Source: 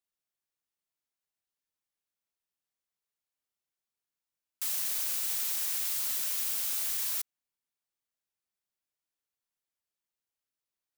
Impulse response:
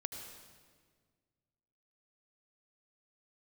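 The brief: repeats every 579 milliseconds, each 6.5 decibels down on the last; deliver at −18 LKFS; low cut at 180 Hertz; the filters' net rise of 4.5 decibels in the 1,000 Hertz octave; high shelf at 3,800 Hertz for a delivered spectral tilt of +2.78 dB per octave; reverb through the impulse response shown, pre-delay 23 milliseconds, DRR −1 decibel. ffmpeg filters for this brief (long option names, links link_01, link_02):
-filter_complex "[0:a]highpass=180,equalizer=frequency=1000:width_type=o:gain=6,highshelf=frequency=3800:gain=-3.5,aecho=1:1:579|1158|1737|2316|2895|3474:0.473|0.222|0.105|0.0491|0.0231|0.0109,asplit=2[link_01][link_02];[1:a]atrim=start_sample=2205,adelay=23[link_03];[link_02][link_03]afir=irnorm=-1:irlink=0,volume=2dB[link_04];[link_01][link_04]amix=inputs=2:normalize=0,volume=11dB"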